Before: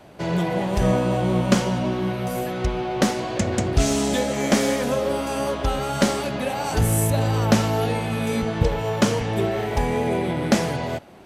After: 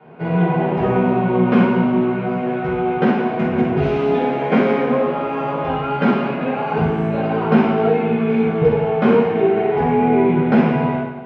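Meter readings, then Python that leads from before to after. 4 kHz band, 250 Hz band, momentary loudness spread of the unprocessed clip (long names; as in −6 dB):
−7.0 dB, +6.5 dB, 6 LU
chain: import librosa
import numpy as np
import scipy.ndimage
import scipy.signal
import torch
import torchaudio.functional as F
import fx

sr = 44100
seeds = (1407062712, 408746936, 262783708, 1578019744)

y = fx.cabinet(x, sr, low_hz=240.0, low_slope=12, high_hz=2000.0, hz=(290.0, 560.0, 810.0, 1200.0, 1800.0), db=(-4, -10, -5, -7, -10))
y = fx.rev_fdn(y, sr, rt60_s=1.1, lf_ratio=0.95, hf_ratio=0.9, size_ms=38.0, drr_db=-9.0)
y = F.gain(torch.from_numpy(y), 2.5).numpy()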